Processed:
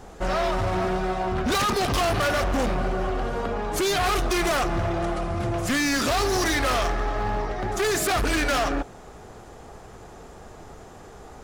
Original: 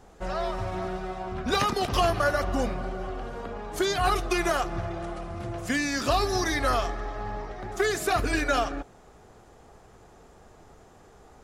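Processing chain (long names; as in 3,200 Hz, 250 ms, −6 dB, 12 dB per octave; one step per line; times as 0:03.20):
hard clipping −30 dBFS, distortion −5 dB
level +9 dB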